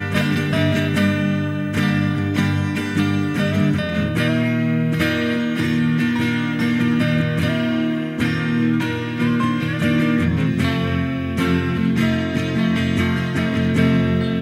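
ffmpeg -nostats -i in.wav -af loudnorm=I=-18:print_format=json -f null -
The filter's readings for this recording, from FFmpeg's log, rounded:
"input_i" : "-19.3",
"input_tp" : "-4.9",
"input_lra" : "0.7",
"input_thresh" : "-29.3",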